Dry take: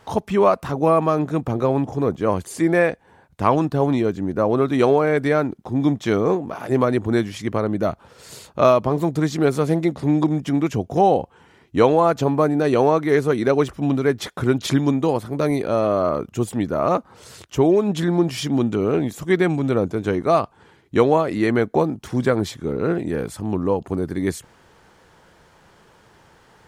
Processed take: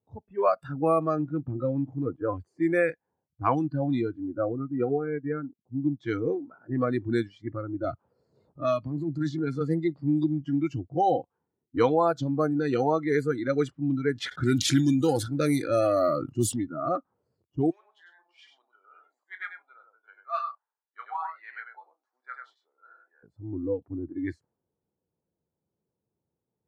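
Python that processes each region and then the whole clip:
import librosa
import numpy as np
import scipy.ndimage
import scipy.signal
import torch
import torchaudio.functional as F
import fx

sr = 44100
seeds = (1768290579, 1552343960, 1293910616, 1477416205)

y = fx.chain(x, sr, fx.spacing_loss(db_at_10k=34),
    fx.upward_expand(threshold_db=-32.0, expansion=1.5), at=(4.52, 6.0))
y = fx.chain(y, sr, fx.transient(attack_db=-12, sustain_db=2),
    fx.band_squash(depth_pct=70), at=(7.84, 9.61))
y = fx.chain(y, sr, fx.high_shelf(hz=5600.0, db=9.5),
    fx.leveller(passes=1),
    fx.sustainer(db_per_s=89.0), at=(14.15, 16.56))
y = fx.chain(y, sr, fx.highpass(hz=890.0, slope=24),
    fx.doubler(ms=31.0, db=-10.5),
    fx.echo_single(ms=99, db=-3.5), at=(17.7, 23.23))
y = fx.noise_reduce_blind(y, sr, reduce_db=21)
y = fx.env_lowpass(y, sr, base_hz=410.0, full_db=-13.5)
y = scipy.signal.sosfilt(scipy.signal.butter(2, 83.0, 'highpass', fs=sr, output='sos'), y)
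y = y * librosa.db_to_amplitude(-6.0)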